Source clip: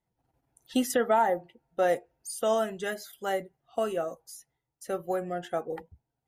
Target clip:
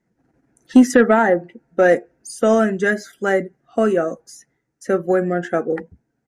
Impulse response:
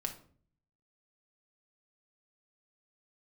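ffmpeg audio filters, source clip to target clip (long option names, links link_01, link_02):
-af "firequalizer=gain_entry='entry(100,0);entry(210,14);entry(890,-2);entry(1600,12);entry(3200,-5);entry(6100,4);entry(14000,-15)':delay=0.05:min_phase=1,acontrast=42"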